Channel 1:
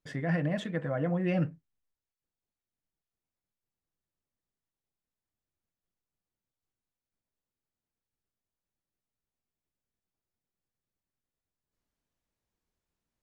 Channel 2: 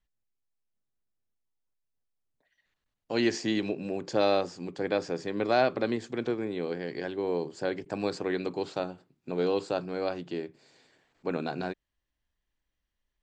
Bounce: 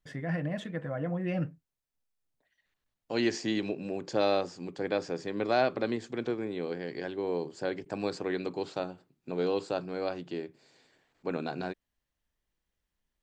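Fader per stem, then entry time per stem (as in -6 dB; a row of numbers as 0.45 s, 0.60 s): -3.0 dB, -2.0 dB; 0.00 s, 0.00 s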